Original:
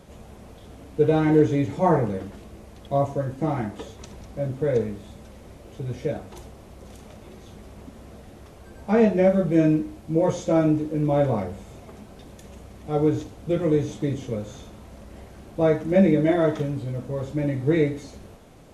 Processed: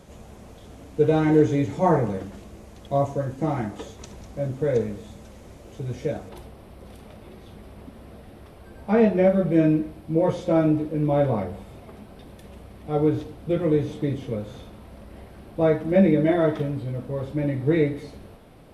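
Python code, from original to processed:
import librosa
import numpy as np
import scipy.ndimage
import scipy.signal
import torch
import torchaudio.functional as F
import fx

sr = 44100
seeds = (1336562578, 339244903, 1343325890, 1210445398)

y = fx.peak_eq(x, sr, hz=6700.0, db=fx.steps((0.0, 2.5), (6.29, -13.0)), octaves=0.47)
y = y + 10.0 ** (-23.5 / 20.0) * np.pad(y, (int(223 * sr / 1000.0), 0))[:len(y)]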